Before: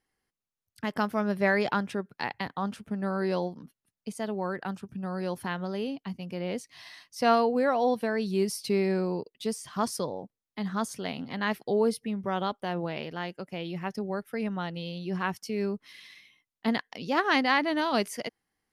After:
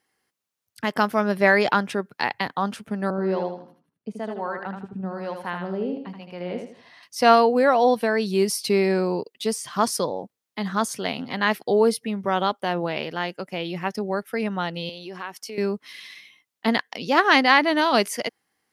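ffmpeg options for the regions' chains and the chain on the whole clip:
ffmpeg -i in.wav -filter_complex "[0:a]asettb=1/sr,asplit=3[link_01][link_02][link_03];[link_01]atrim=end=3.104[link_04];[link_02]atrim=start=3.1:end=7.03,asetpts=PTS-STARTPTS,afade=type=in:duration=0.004:curve=qsin,afade=type=out:start_time=3.926:duration=0.004:curve=qsin,lowpass=frequency=1300:poles=1,acrossover=split=650[link_05][link_06];[link_05]aeval=exprs='val(0)*(1-0.7/2+0.7/2*cos(2*PI*1.1*n/s))':channel_layout=same[link_07];[link_06]aeval=exprs='val(0)*(1-0.7/2-0.7/2*cos(2*PI*1.1*n/s))':channel_layout=same[link_08];[link_07][link_08]amix=inputs=2:normalize=0,aecho=1:1:79|158|237|316:0.501|0.165|0.0546|0.018,atrim=end_sample=173313[link_09];[link_03]atrim=start=7.026[link_10];[link_04][link_09]acrossfade=duration=0.004:curve1=hsin:curve2=qsin[link_11];[link_11][link_10]acrossfade=duration=0.004:curve1=qsin:curve2=hsin,asettb=1/sr,asplit=3[link_12][link_13][link_14];[link_12]atrim=end=14.894[link_15];[link_13]atrim=start=14.89:end=15.58,asetpts=PTS-STARTPTS,afade=type=in:duration=0.004:curve=qsin,afade=type=out:start_time=0.686:duration=0.004:curve=qsin,highpass=300,acompressor=threshold=-41dB:ratio=2.5:attack=3.2:release=140:knee=1:detection=peak[link_16];[link_14]atrim=start=15.576[link_17];[link_15][link_16]acrossfade=duration=0.004:curve1=hsin:curve2=qsin[link_18];[link_18][link_17]acrossfade=duration=0.004:curve1=qsin:curve2=hsin,highpass=79,lowshelf=frequency=220:gain=-8.5,volume=8.5dB" out.wav

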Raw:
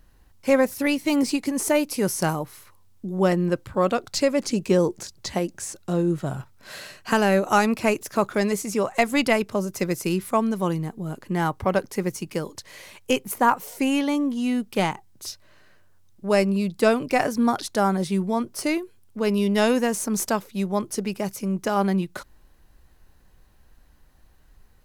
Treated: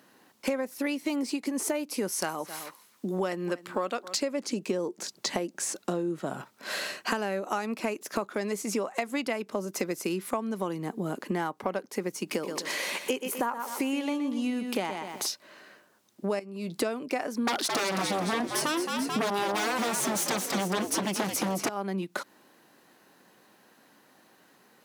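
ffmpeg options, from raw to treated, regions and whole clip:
ffmpeg -i in.wav -filter_complex "[0:a]asettb=1/sr,asplit=3[link_01][link_02][link_03];[link_01]atrim=end=2.124[link_04];[link_02]atrim=start=2.12:end=4.17,asetpts=PTS-STARTPTS,afade=type=in:duration=0.004:curve=qsin,afade=type=out:start_time=2.046:duration=0.004:curve=qsin,tiltshelf=frequency=750:gain=-4,aecho=1:1:263:0.0841,atrim=end_sample=90405[link_05];[link_03]atrim=start=4.166[link_06];[link_04][link_05]acrossfade=duration=0.004:curve1=hsin:curve2=qsin[link_07];[link_07][link_06]acrossfade=duration=0.004:curve1=qsin:curve2=hsin,asettb=1/sr,asplit=3[link_08][link_09][link_10];[link_08]atrim=end=12.234[link_11];[link_09]atrim=start=12.23:end=15.28,asetpts=PTS-STARTPTS,afade=type=in:duration=0.004:curve=qsin,afade=type=out:start_time=3.046:duration=0.004:curve=qsin,equalizer=frequency=61:width=0.81:gain=-7.5,acompressor=mode=upward:threshold=-28dB:ratio=2.5:attack=3.2:release=140:knee=2.83:detection=peak,aecho=1:1:123|246|369:0.335|0.1|0.0301,atrim=end_sample=134505[link_12];[link_10]atrim=start=15.276[link_13];[link_11][link_12]acrossfade=duration=0.004:curve1=hsin:curve2=qsin[link_14];[link_14][link_13]acrossfade=duration=0.004:curve1=qsin:curve2=hsin,asettb=1/sr,asplit=3[link_15][link_16][link_17];[link_15]atrim=end=16.394[link_18];[link_16]atrim=start=16.39:end=16.81,asetpts=PTS-STARTPTS,afade=type=in:duration=0.004:curve=qsin,afade=type=out:start_time=0.416:duration=0.004:curve=qsin,acompressor=threshold=-29dB:ratio=8:attack=3.2:release=140:knee=1:detection=peak,asplit=2[link_19][link_20];[link_20]adelay=18,volume=-14dB[link_21];[link_19][link_21]amix=inputs=2:normalize=0,atrim=end_sample=18522[link_22];[link_17]atrim=start=16.806[link_23];[link_18][link_22]acrossfade=duration=0.004:curve1=hsin:curve2=qsin[link_24];[link_24][link_23]acrossfade=duration=0.004:curve1=qsin:curve2=hsin,asettb=1/sr,asplit=3[link_25][link_26][link_27];[link_25]atrim=end=17.474[link_28];[link_26]atrim=start=17.47:end=21.69,asetpts=PTS-STARTPTS,afade=type=in:duration=0.004:curve=qsin,afade=type=out:start_time=4.216:duration=0.004:curve=qsin,aeval=exprs='0.355*sin(PI/2*6.31*val(0)/0.355)':channel_layout=same,asplit=7[link_29][link_30][link_31][link_32][link_33][link_34][link_35];[link_30]adelay=218,afreqshift=-86,volume=-6.5dB[link_36];[link_31]adelay=436,afreqshift=-172,volume=-12.5dB[link_37];[link_32]adelay=654,afreqshift=-258,volume=-18.5dB[link_38];[link_33]adelay=872,afreqshift=-344,volume=-24.6dB[link_39];[link_34]adelay=1090,afreqshift=-430,volume=-30.6dB[link_40];[link_35]adelay=1308,afreqshift=-516,volume=-36.6dB[link_41];[link_29][link_36][link_37][link_38][link_39][link_40][link_41]amix=inputs=7:normalize=0,atrim=end_sample=186102[link_42];[link_27]atrim=start=21.686[link_43];[link_28][link_42]acrossfade=duration=0.004:curve1=hsin:curve2=qsin[link_44];[link_44][link_43]acrossfade=duration=0.004:curve1=qsin:curve2=hsin,highpass=frequency=210:width=0.5412,highpass=frequency=210:width=1.3066,highshelf=frequency=6500:gain=-4,acompressor=threshold=-34dB:ratio=10,volume=7dB" out.wav

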